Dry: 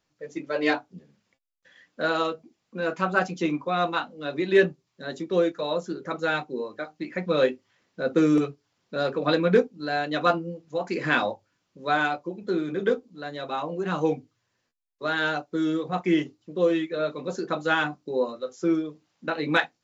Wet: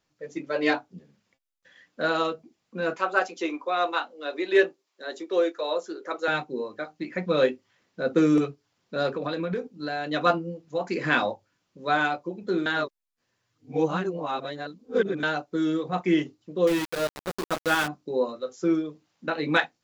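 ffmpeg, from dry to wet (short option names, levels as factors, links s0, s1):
-filter_complex "[0:a]asettb=1/sr,asplit=3[s0][s1][s2];[s0]atrim=end=2.974[s3];[s1]atrim=start=2.97:end=6.28,asetpts=PTS-STARTPTS,afade=t=in:d=0.004:c=qsin,afade=t=out:st=3.306:d=0.004:c=qsin,highpass=f=340:w=0.5412,highpass=f=340:w=1.3066[s4];[s2]atrim=start=6.276[s5];[s3][s4]acrossfade=d=0.004:c1=hsin:c2=qsin[s6];[s6][s5]acrossfade=d=0.004:c1=qsin:c2=hsin,asettb=1/sr,asplit=3[s7][s8][s9];[s7]atrim=end=9.104[s10];[s8]atrim=start=9.1:end=10.1,asetpts=PTS-STARTPTS,afade=t=in:d=0.004:c=qsin,afade=t=out:st=0.996:d=0.004:c=qsin,acompressor=threshold=0.0562:ratio=10:attack=3.2:release=140:knee=1:detection=peak[s11];[s9]atrim=start=10.096[s12];[s10][s11]acrossfade=d=0.004:c1=hsin:c2=qsin[s13];[s13][s12]acrossfade=d=0.004:c1=qsin:c2=hsin,asettb=1/sr,asplit=3[s14][s15][s16];[s14]atrim=end=16.674[s17];[s15]atrim=start=16.67:end=17.88,asetpts=PTS-STARTPTS,afade=t=in:d=0.004:c=qsin,afade=t=out:st=1.206:d=0.004:c=qsin,aeval=exprs='val(0)*gte(abs(val(0)),0.0447)':c=same[s18];[s16]atrim=start=17.876[s19];[s17][s18]acrossfade=d=0.004:c1=hsin:c2=qsin[s20];[s20][s19]acrossfade=d=0.004:c1=qsin:c2=hsin,asplit=3[s21][s22][s23];[s21]atrim=end=12.662[s24];[s22]atrim=start=12.658:end=15.232,asetpts=PTS-STARTPTS,areverse[s25];[s23]atrim=start=15.228[s26];[s24][s25]acrossfade=d=0.004:c1=hsin:c2=hsin[s27];[s27][s26]acrossfade=d=0.004:c1=hsin:c2=hsin"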